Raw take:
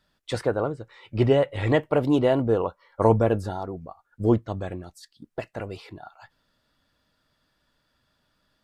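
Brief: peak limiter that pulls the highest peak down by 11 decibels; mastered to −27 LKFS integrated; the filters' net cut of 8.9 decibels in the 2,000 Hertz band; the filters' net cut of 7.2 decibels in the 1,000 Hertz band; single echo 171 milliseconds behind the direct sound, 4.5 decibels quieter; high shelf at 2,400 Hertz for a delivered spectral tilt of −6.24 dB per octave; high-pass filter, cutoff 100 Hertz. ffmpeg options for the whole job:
ffmpeg -i in.wav -af "highpass=100,equalizer=frequency=1000:width_type=o:gain=-8,equalizer=frequency=2000:width_type=o:gain=-6,highshelf=frequency=2400:gain=-5,alimiter=limit=-17.5dB:level=0:latency=1,aecho=1:1:171:0.596,volume=2.5dB" out.wav

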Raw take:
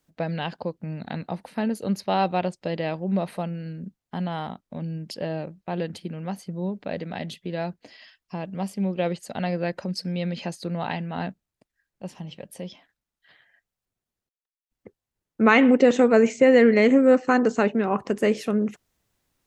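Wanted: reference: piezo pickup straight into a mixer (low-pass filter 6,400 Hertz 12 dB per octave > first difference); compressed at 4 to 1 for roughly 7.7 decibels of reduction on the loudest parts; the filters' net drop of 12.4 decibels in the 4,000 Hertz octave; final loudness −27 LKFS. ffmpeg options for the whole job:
ffmpeg -i in.wav -af "equalizer=frequency=4000:width_type=o:gain=-8.5,acompressor=threshold=-21dB:ratio=4,lowpass=6400,aderivative,volume=22.5dB" out.wav

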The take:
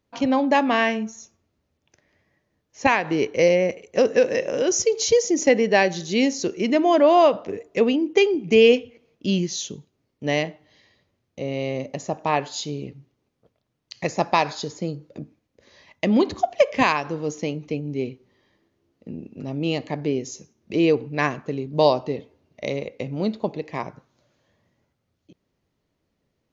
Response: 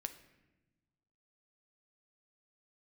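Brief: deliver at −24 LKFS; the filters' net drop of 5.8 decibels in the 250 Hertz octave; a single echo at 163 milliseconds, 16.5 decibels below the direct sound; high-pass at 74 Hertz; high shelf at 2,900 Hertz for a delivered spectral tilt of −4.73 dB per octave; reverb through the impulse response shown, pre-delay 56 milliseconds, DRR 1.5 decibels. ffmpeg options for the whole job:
-filter_complex "[0:a]highpass=74,equalizer=frequency=250:width_type=o:gain=-7.5,highshelf=frequency=2900:gain=-7,aecho=1:1:163:0.15,asplit=2[link_01][link_02];[1:a]atrim=start_sample=2205,adelay=56[link_03];[link_02][link_03]afir=irnorm=-1:irlink=0,volume=1dB[link_04];[link_01][link_04]amix=inputs=2:normalize=0,volume=-2dB"

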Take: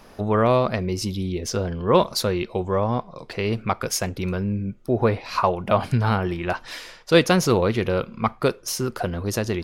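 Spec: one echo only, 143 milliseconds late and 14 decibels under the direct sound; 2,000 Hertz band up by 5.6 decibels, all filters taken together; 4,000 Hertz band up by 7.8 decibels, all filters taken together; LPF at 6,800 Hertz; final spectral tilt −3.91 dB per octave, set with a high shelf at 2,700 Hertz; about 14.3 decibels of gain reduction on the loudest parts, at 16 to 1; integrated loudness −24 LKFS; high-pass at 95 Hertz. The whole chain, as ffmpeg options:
ffmpeg -i in.wav -af "highpass=95,lowpass=6800,equalizer=frequency=2000:width_type=o:gain=3.5,highshelf=frequency=2700:gain=7,equalizer=frequency=4000:width_type=o:gain=3.5,acompressor=threshold=-22dB:ratio=16,aecho=1:1:143:0.2,volume=4dB" out.wav

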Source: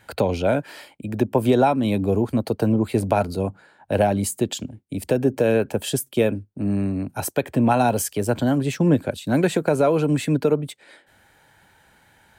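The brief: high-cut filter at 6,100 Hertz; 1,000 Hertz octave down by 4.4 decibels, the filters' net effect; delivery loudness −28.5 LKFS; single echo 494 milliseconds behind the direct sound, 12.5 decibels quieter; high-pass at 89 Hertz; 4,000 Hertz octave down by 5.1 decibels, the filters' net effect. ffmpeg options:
ffmpeg -i in.wav -af "highpass=89,lowpass=6100,equalizer=frequency=1000:width_type=o:gain=-6.5,equalizer=frequency=4000:width_type=o:gain=-5.5,aecho=1:1:494:0.237,volume=-5.5dB" out.wav

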